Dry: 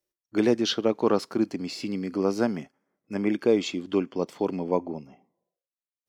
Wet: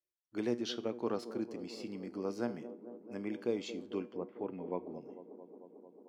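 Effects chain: 4.15–4.93 s: low-pass 1.9 kHz -> 3.8 kHz 24 dB/octave; feedback comb 120 Hz, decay 0.4 s, harmonics all, mix 50%; feedback echo behind a band-pass 223 ms, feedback 80%, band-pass 410 Hz, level -12.5 dB; trim -8.5 dB

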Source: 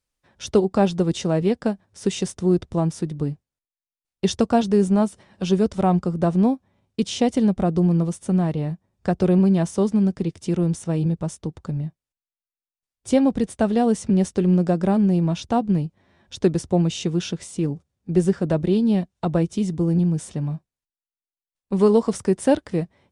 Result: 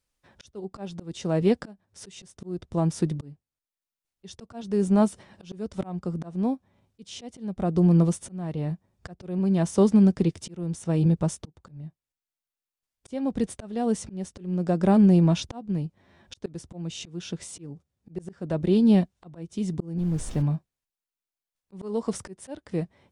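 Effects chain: 19.97–20.41 s: added noise brown -35 dBFS; slow attack 625 ms; trim +1.5 dB

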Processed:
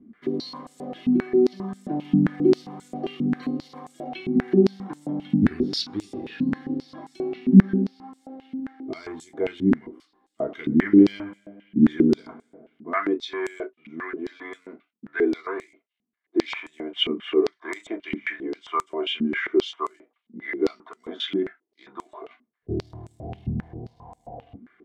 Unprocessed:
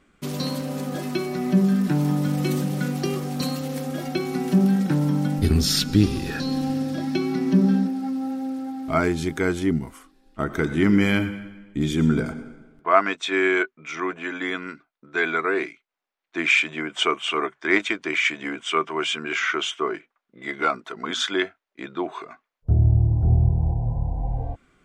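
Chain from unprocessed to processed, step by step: companding laws mixed up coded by mu; bass shelf 360 Hz +12 dB; band-stop 1.1 kHz, Q 14; reverberation, pre-delay 3 ms, DRR 1.5 dB; step-sequenced band-pass 7.5 Hz 220–7800 Hz; trim -6.5 dB

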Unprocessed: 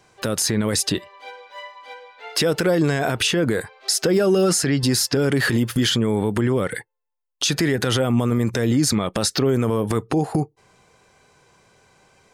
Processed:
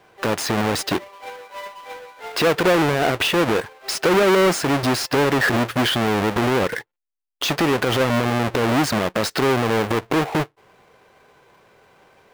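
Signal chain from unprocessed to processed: square wave that keeps the level; tone controls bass -9 dB, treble -10 dB

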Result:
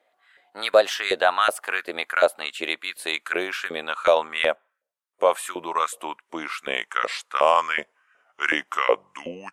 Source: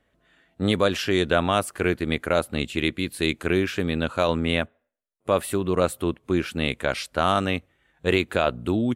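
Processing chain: gliding tape speed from 110% -> 78%; LFO high-pass saw up 2.7 Hz 510–1600 Hz

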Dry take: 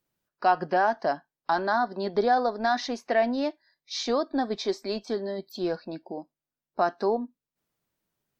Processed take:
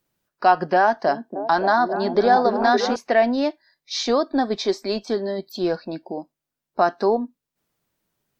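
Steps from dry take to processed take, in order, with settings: 0.79–2.96 s: repeats whose band climbs or falls 282 ms, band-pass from 270 Hz, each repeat 0.7 oct, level -1.5 dB; trim +6 dB

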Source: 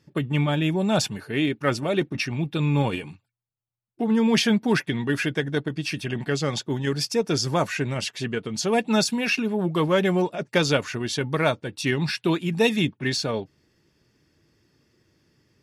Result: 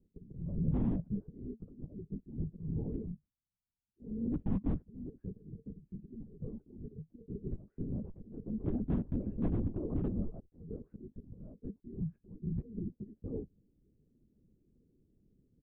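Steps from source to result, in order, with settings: 8.03–10.49 s: comb filter that takes the minimum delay 9.6 ms; comb 4.8 ms, depth 62%; compression 16:1, threshold -22 dBFS, peak gain reduction 11.5 dB; slow attack 467 ms; four-pole ladder low-pass 400 Hz, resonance 20%; AM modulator 38 Hz, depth 10%; hard clipper -28 dBFS, distortion -20 dB; feedback comb 150 Hz, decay 0.17 s, harmonics odd, mix 50%; LPC vocoder at 8 kHz whisper; trim +6 dB

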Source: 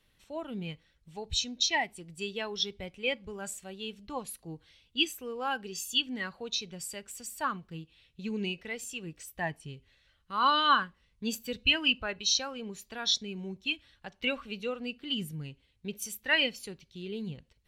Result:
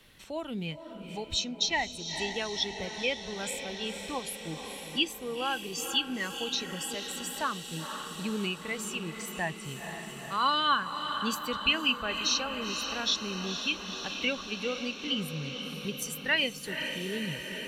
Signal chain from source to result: on a send: echo that smears into a reverb 481 ms, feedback 71%, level -10.5 dB; on the sum: three bands compressed up and down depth 40%; trim +1 dB

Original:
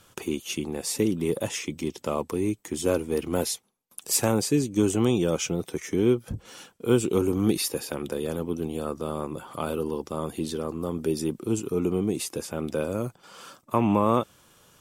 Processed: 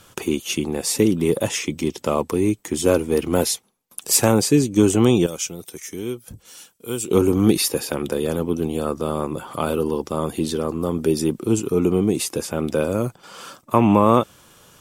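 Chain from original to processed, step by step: 5.26–7.09 s: pre-emphasis filter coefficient 0.8; trim +7 dB

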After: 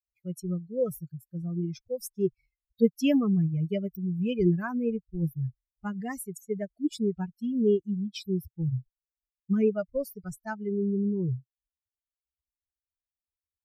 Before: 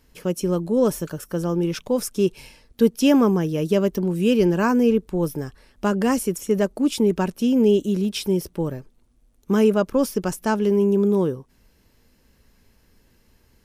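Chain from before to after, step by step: expander on every frequency bin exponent 3; ten-band graphic EQ 125 Hz +11 dB, 250 Hz -5 dB, 1 kHz -11 dB, 4 kHz -5 dB, 8 kHz -6 dB

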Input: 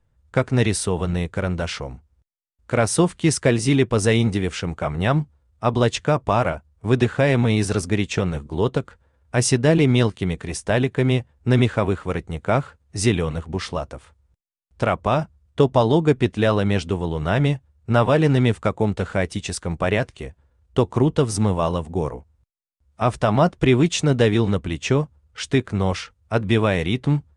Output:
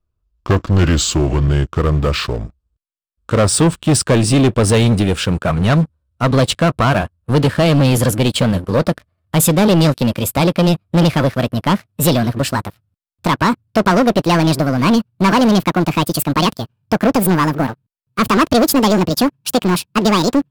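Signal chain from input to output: gliding tape speed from 72% -> 195%; graphic EQ with 31 bands 400 Hz -3 dB, 800 Hz -9 dB, 2 kHz -10 dB, 6.3 kHz -8 dB; waveshaping leveller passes 3

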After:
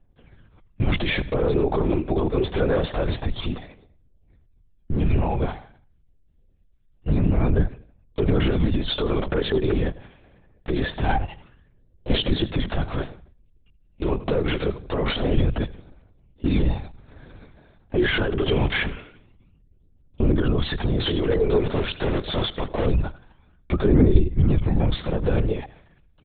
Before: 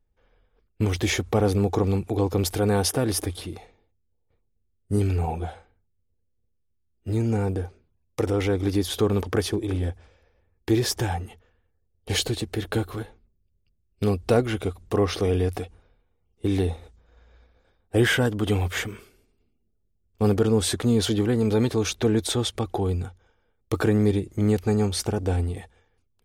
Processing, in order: 21.64–22.86 s: cycle switcher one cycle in 3, muted; 24.13–24.81 s: resonant low shelf 110 Hz +8 dB, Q 1.5; peak limiter -21 dBFS, peak gain reduction 11 dB; phaser 0.25 Hz, delay 3 ms, feedback 52%; on a send: feedback delay 85 ms, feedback 34%, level -18 dB; on the sum: LPC vocoder at 8 kHz whisper; trim +6 dB

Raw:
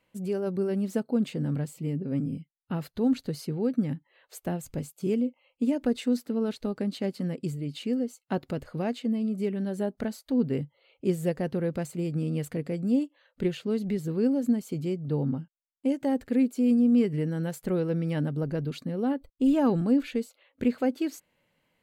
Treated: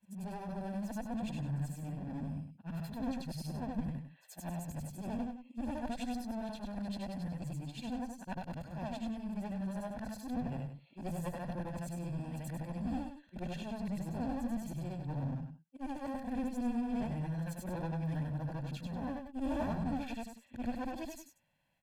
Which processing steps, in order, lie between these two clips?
short-time spectra conjugated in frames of 197 ms; one-sided clip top -37.5 dBFS; comb 1.2 ms, depth 76%; delay 100 ms -8.5 dB; trim -5 dB

